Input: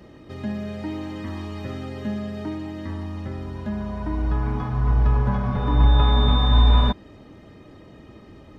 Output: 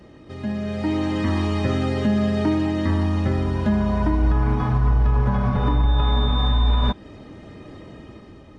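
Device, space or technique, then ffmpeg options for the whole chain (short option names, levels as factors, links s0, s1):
low-bitrate web radio: -af "dynaudnorm=f=130:g=13:m=3.35,alimiter=limit=0.282:level=0:latency=1:release=147" -ar 24000 -c:a aac -b:a 48k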